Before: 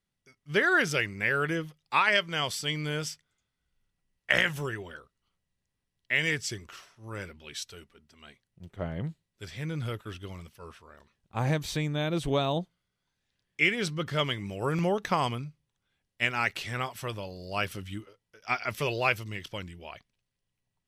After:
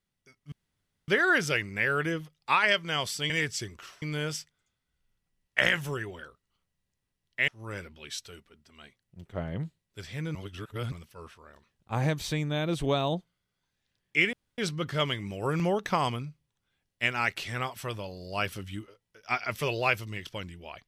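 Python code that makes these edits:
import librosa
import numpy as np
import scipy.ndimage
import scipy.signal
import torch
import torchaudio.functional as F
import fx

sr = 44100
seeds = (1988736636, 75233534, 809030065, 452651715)

y = fx.edit(x, sr, fx.insert_room_tone(at_s=0.52, length_s=0.56),
    fx.move(start_s=6.2, length_s=0.72, to_s=2.74),
    fx.reverse_span(start_s=9.79, length_s=0.57),
    fx.insert_room_tone(at_s=13.77, length_s=0.25), tone=tone)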